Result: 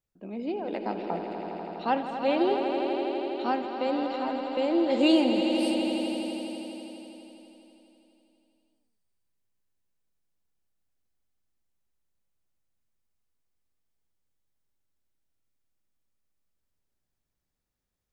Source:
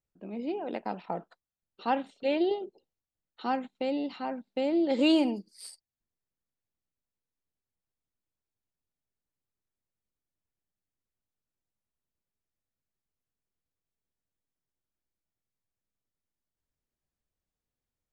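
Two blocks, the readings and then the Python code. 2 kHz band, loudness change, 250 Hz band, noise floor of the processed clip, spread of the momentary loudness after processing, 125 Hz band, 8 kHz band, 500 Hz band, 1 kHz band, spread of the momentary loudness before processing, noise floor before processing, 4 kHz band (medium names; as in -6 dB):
+4.0 dB, +2.5 dB, +3.5 dB, -83 dBFS, 14 LU, no reading, +4.0 dB, +4.5 dB, +5.0 dB, 15 LU, under -85 dBFS, +4.5 dB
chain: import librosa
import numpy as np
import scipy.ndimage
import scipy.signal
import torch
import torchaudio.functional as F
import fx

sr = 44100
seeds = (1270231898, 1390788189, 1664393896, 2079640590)

y = fx.echo_swell(x, sr, ms=82, loudest=5, wet_db=-10.0)
y = y * librosa.db_to_amplitude(1.5)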